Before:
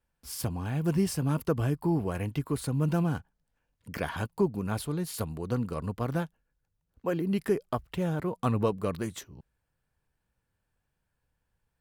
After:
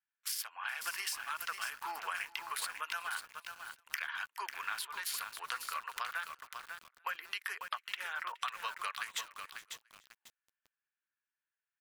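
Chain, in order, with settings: local Wiener filter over 9 samples; gate with hold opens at -45 dBFS; high-pass 1.4 kHz 24 dB/octave; spectral gate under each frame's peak -30 dB strong; dynamic bell 9.2 kHz, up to -6 dB, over -57 dBFS, Q 0.74; compression 16:1, threshold -52 dBFS, peak gain reduction 17.5 dB; on a send: feedback delay 420 ms, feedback 28%, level -21 dB; on the sum: bit-crushed delay 546 ms, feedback 35%, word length 11-bit, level -6 dB; trim +17 dB

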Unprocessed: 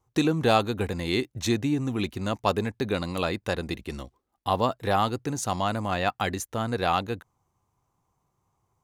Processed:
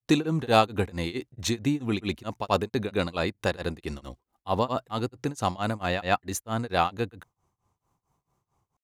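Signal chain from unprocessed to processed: granulator 258 ms, grains 4.5 per s, pitch spread up and down by 0 st; trim +2.5 dB

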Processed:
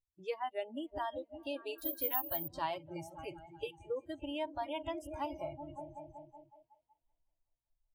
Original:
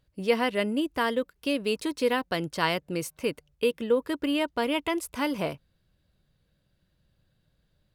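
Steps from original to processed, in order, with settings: FFT filter 110 Hz 0 dB, 190 Hz -18 dB, 290 Hz -14 dB, 500 Hz -12 dB, 800 Hz 0 dB, 1.4 kHz -17 dB, 3.2 kHz -11 dB, 5.3 kHz -17 dB, 15 kHz -24 dB; delay with an opening low-pass 187 ms, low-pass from 200 Hz, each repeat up 2 oct, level -6 dB; in parallel at +1 dB: compression 10:1, threshold -40 dBFS, peak gain reduction 12.5 dB; on the sum: spectral noise reduction 30 dB; 1.78–2.48 s: careless resampling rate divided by 3×, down none, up zero stuff; trim -4.5 dB

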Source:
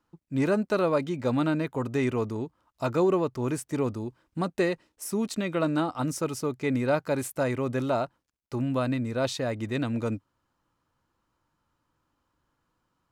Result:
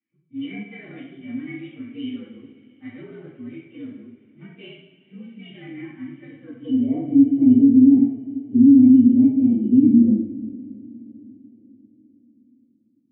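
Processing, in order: frequency axis rescaled in octaves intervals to 119%; band-pass sweep 1.9 kHz -> 300 Hz, 6.36–7.13 s; cascade formant filter i; peaking EQ 150 Hz +10.5 dB 1.4 oct; reverberation, pre-delay 3 ms, DRR -7 dB; loudness maximiser +16 dB; trim -4 dB

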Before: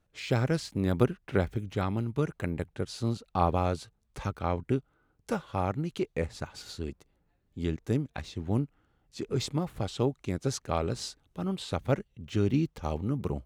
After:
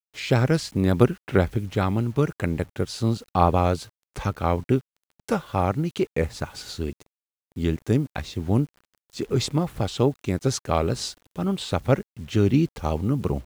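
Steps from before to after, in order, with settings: vibrato 3.5 Hz 34 cents; bit crusher 10-bit; trim +7 dB

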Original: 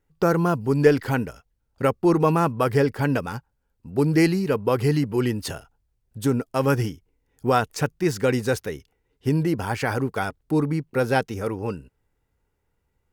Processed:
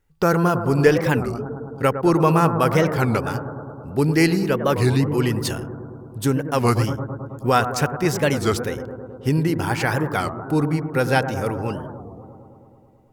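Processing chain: peaking EQ 350 Hz -4.5 dB 2.7 oct; bucket-brigade echo 107 ms, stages 1024, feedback 78%, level -10 dB; warped record 33 1/3 rpm, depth 250 cents; trim +5 dB

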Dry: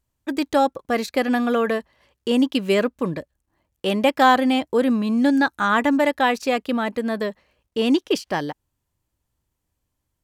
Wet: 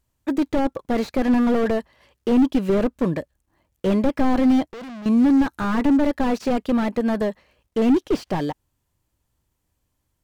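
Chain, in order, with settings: 4.66–5.06 s: valve stage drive 38 dB, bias 0.75; slew-rate limiter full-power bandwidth 41 Hz; trim +3.5 dB

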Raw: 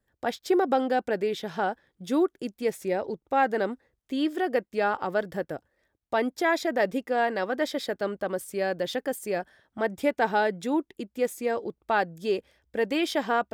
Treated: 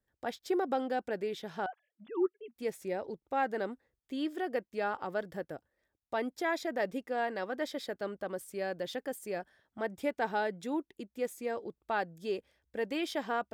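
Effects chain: 1.66–2.56 s: formants replaced by sine waves; trim -8 dB

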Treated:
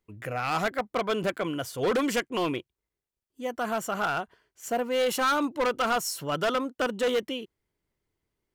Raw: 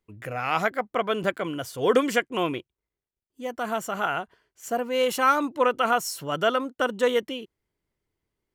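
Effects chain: hard clipper -21.5 dBFS, distortion -9 dB

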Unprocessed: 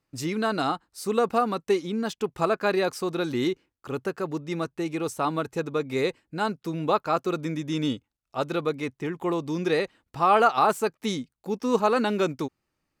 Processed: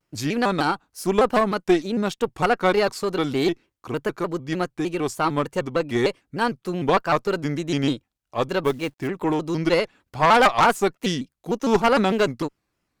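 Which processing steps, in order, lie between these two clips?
Chebyshev shaper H 4 -14 dB, 5 -8 dB, 7 -13 dB, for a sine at -8 dBFS; 8.65–9.07 s: companded quantiser 6-bit; vibrato with a chosen wave square 3.3 Hz, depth 160 cents

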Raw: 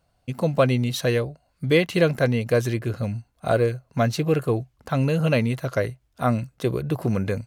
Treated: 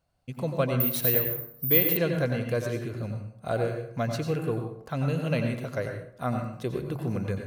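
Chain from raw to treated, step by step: plate-style reverb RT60 0.62 s, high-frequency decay 0.6×, pre-delay 80 ms, DRR 4 dB; 0.80–1.97 s: careless resampling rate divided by 3×, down none, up zero stuff; trim -8 dB

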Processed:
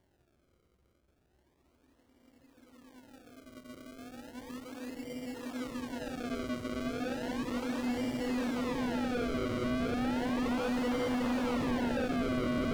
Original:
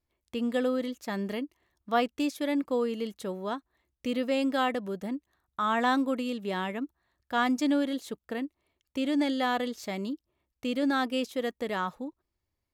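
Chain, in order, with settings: level-controlled noise filter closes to 2 kHz; Paulstretch 46×, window 0.50 s, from 10.38 s; hard clipper -36.5 dBFS, distortion -7 dB; on a send: feedback echo behind a high-pass 64 ms, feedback 84%, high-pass 1.4 kHz, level -6 dB; on the sum: decimation with a swept rate 34×, swing 100% 0.34 Hz; slew-rate limiter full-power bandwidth 31 Hz; trim +6.5 dB

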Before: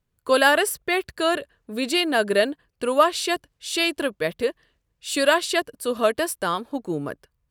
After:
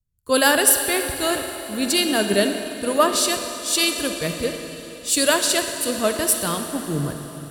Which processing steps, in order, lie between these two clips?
tone controls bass +13 dB, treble +14 dB; reverberation RT60 5.6 s, pre-delay 42 ms, DRR 4 dB; three bands expanded up and down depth 40%; trim -3 dB

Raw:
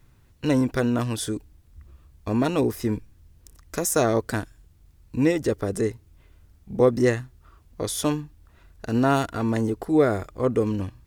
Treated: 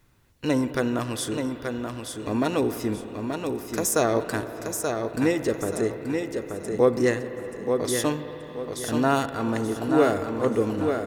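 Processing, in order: bass shelf 160 Hz -9 dB; feedback delay 880 ms, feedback 32%, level -5.5 dB; on a send at -10 dB: reverberation RT60 5.1 s, pre-delay 52 ms

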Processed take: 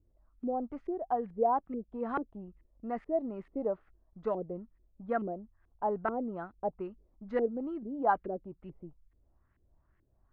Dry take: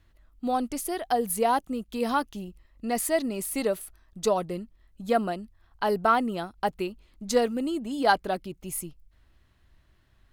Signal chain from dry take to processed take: LFO low-pass saw up 2.3 Hz 360–2100 Hz; tape spacing loss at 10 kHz 24 dB; trim -8 dB

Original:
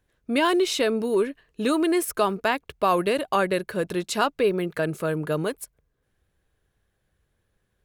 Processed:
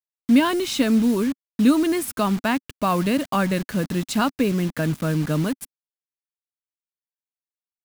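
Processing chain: mains buzz 400 Hz, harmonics 13, -55 dBFS -2 dB/octave; word length cut 6-bit, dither none; resonant low shelf 320 Hz +6.5 dB, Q 3

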